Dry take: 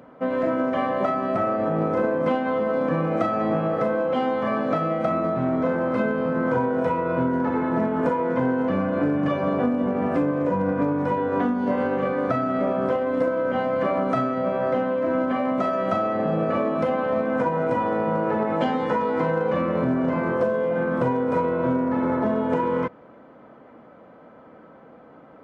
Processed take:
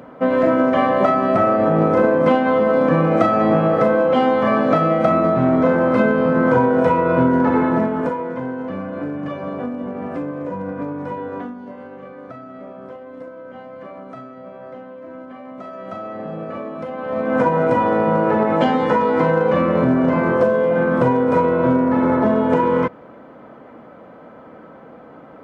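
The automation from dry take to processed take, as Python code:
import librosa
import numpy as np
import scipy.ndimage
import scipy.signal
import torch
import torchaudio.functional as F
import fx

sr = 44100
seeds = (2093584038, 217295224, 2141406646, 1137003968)

y = fx.gain(x, sr, db=fx.line((7.61, 7.5), (8.39, -4.0), (11.28, -4.0), (11.73, -13.0), (15.42, -13.0), (16.12, -6.0), (16.92, -6.0), (17.38, 6.5)))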